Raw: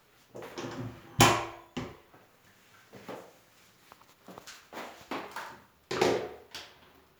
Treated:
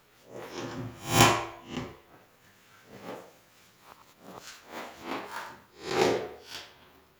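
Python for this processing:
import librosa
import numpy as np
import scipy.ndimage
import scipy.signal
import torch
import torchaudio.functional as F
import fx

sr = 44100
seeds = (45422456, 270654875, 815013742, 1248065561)

y = fx.spec_swells(x, sr, rise_s=0.37)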